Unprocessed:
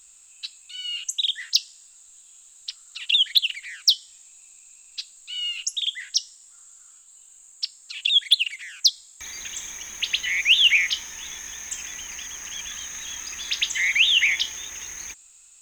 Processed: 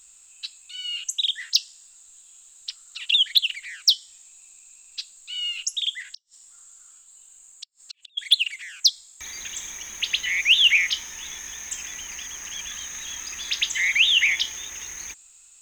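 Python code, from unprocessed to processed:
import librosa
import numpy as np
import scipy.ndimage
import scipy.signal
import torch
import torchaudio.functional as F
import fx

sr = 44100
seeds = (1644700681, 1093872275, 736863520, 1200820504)

y = fx.gate_flip(x, sr, shuts_db=-23.0, range_db=-40, at=(6.02, 8.17), fade=0.02)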